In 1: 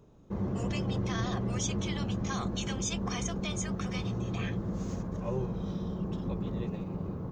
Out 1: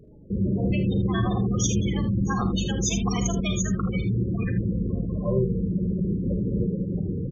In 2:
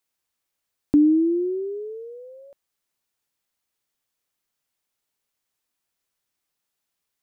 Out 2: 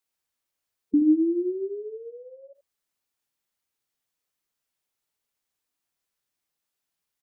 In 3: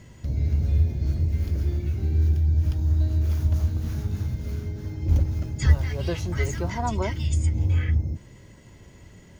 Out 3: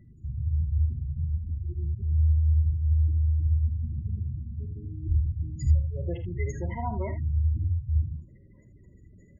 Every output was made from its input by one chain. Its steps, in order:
spectral gate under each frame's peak -15 dB strong; early reflections 39 ms -16 dB, 52 ms -12.5 dB, 78 ms -10 dB; normalise peaks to -12 dBFS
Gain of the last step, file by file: +8.5, -3.5, -5.0 dB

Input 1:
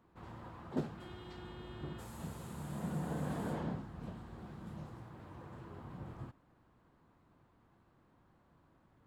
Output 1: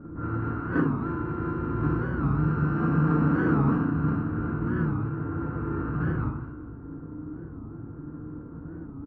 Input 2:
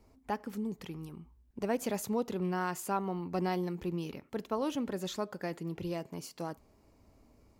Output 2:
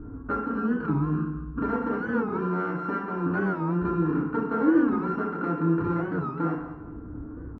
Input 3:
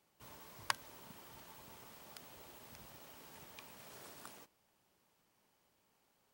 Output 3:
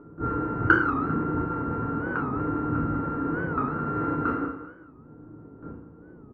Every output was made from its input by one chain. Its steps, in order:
sample sorter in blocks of 32 samples; compressor 5:1, threshold -40 dBFS; soft clip -28.5 dBFS; synth low-pass 1400 Hz, resonance Q 3.6; gate with hold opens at -60 dBFS; upward compressor, threshold -44 dBFS; dynamic EQ 1100 Hz, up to +6 dB, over -51 dBFS, Q 0.85; FDN reverb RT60 0.92 s, low-frequency decay 0.95×, high-frequency decay 0.6×, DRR -4.5 dB; low-pass opened by the level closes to 720 Hz, open at -28.5 dBFS; resonant low shelf 490 Hz +11 dB, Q 1.5; feedback echo 0.197 s, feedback 33%, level -13.5 dB; record warp 45 rpm, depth 160 cents; match loudness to -27 LUFS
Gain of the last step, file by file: +1.5, -0.5, +13.0 dB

